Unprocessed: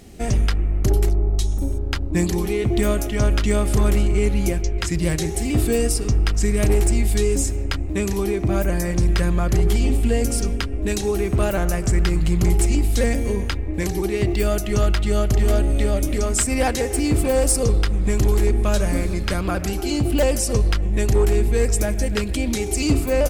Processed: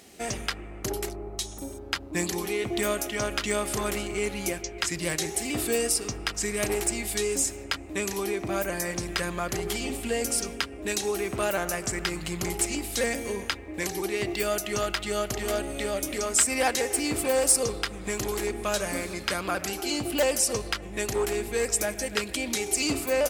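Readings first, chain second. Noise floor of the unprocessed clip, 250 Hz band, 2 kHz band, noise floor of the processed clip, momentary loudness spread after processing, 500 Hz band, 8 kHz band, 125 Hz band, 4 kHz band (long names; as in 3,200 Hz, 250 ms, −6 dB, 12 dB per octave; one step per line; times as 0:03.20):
−25 dBFS, −10.0 dB, −0.5 dB, −40 dBFS, 7 LU, −5.5 dB, 0.0 dB, −18.5 dB, 0.0 dB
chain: high-pass filter 750 Hz 6 dB per octave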